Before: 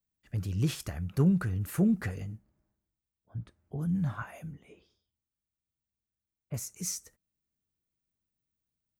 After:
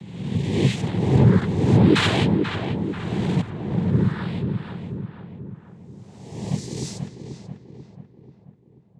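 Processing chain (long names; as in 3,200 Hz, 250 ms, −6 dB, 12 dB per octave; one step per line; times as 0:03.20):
peak hold with a rise ahead of every peak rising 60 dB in 1.29 s
phaser with its sweep stopped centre 2,500 Hz, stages 4
0:01.95–0:03.41: mid-hump overdrive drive 34 dB, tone 3,400 Hz, clips at −21 dBFS
cochlear-implant simulation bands 6
feedback echo with a low-pass in the loop 487 ms, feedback 53%, low-pass 2,000 Hz, level −6 dB
level +8.5 dB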